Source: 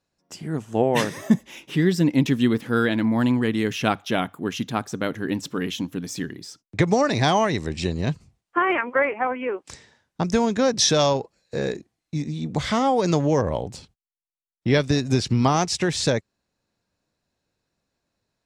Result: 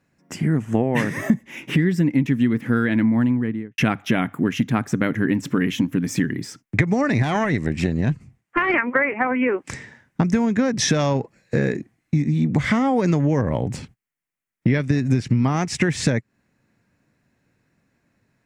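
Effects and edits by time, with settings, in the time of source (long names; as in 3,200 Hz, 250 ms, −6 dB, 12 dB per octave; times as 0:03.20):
0:02.98–0:03.78: fade out and dull
0:07.22–0:08.74: tube saturation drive 12 dB, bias 0.75
whole clip: octave-band graphic EQ 125/250/2,000/4,000 Hz +9/+8/+11/−8 dB; downward compressor 6 to 1, threshold −22 dBFS; level +5.5 dB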